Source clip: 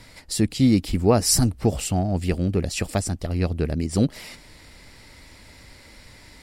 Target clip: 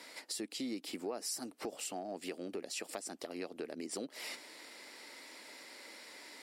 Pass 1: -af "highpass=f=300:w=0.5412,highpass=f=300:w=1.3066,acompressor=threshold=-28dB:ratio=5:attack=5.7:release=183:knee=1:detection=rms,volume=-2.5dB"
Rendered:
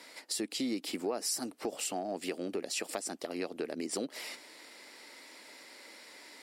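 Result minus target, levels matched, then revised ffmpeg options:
compressor: peak gain reduction -5.5 dB
-af "highpass=f=300:w=0.5412,highpass=f=300:w=1.3066,acompressor=threshold=-35dB:ratio=5:attack=5.7:release=183:knee=1:detection=rms,volume=-2.5dB"

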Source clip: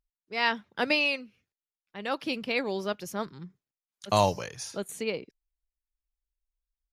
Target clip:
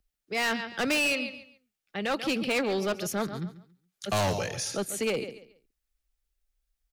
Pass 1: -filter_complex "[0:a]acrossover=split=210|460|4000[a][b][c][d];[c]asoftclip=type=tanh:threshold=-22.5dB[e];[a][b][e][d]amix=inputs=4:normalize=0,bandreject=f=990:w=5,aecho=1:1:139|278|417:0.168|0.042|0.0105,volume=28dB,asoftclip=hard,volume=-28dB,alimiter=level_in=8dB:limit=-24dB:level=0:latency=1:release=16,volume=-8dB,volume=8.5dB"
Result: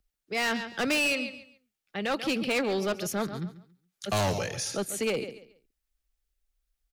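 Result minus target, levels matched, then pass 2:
soft clip: distortion +11 dB
-filter_complex "[0:a]acrossover=split=210|460|4000[a][b][c][d];[c]asoftclip=type=tanh:threshold=-14dB[e];[a][b][e][d]amix=inputs=4:normalize=0,bandreject=f=990:w=5,aecho=1:1:139|278|417:0.168|0.042|0.0105,volume=28dB,asoftclip=hard,volume=-28dB,alimiter=level_in=8dB:limit=-24dB:level=0:latency=1:release=16,volume=-8dB,volume=8.5dB"

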